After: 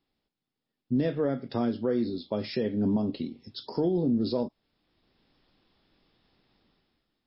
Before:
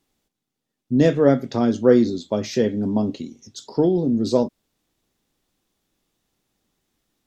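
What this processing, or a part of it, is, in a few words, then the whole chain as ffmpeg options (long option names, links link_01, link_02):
low-bitrate web radio: -af "dynaudnorm=framelen=100:gausssize=11:maxgain=12.5dB,alimiter=limit=-11.5dB:level=0:latency=1:release=315,volume=-6dB" -ar 12000 -c:a libmp3lame -b:a 24k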